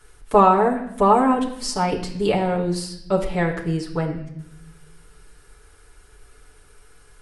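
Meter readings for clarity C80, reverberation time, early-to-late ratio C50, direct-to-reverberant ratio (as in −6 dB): 12.0 dB, 0.75 s, 9.5 dB, −4.5 dB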